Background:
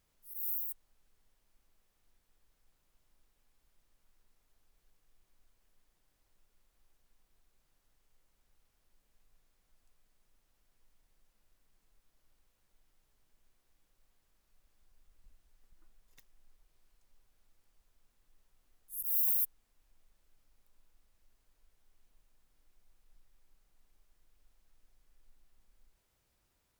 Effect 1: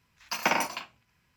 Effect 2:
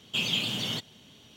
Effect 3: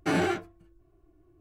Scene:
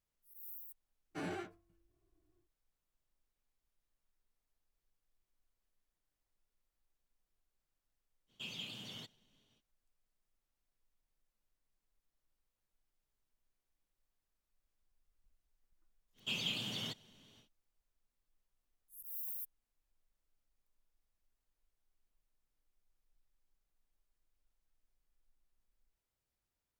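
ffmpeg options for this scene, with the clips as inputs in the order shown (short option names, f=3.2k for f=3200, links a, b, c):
-filter_complex "[2:a]asplit=2[a][b];[0:a]volume=-13.5dB[c];[a]agate=range=-33dB:threshold=-52dB:ratio=3:release=100:detection=peak[d];[3:a]atrim=end=1.4,asetpts=PTS-STARTPTS,volume=-16dB,afade=t=in:d=0.1,afade=t=out:st=1.3:d=0.1,adelay=1090[e];[d]atrim=end=1.36,asetpts=PTS-STARTPTS,volume=-17.5dB,afade=t=in:d=0.05,afade=t=out:st=1.31:d=0.05,adelay=364266S[f];[b]atrim=end=1.36,asetpts=PTS-STARTPTS,volume=-10dB,afade=t=in:d=0.1,afade=t=out:st=1.26:d=0.1,adelay=16130[g];[c][e][f][g]amix=inputs=4:normalize=0"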